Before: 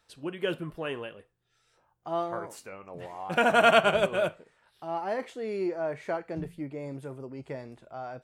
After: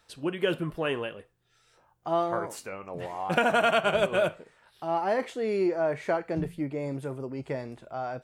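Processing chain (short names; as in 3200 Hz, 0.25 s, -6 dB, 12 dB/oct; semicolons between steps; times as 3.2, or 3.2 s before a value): compressor 6:1, threshold -25 dBFS, peak gain reduction 10 dB; gain +5 dB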